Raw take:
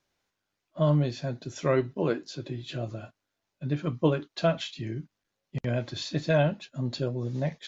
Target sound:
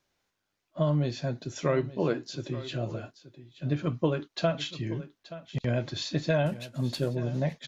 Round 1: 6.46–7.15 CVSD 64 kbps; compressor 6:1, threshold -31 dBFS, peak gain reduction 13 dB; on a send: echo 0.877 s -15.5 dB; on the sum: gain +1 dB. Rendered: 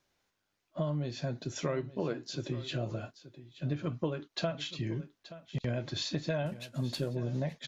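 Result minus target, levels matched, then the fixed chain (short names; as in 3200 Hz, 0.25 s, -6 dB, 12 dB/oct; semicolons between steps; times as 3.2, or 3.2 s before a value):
compressor: peak gain reduction +7.5 dB
6.46–7.15 CVSD 64 kbps; compressor 6:1, threshold -22 dBFS, peak gain reduction 5.5 dB; on a send: echo 0.877 s -15.5 dB; on the sum: gain +1 dB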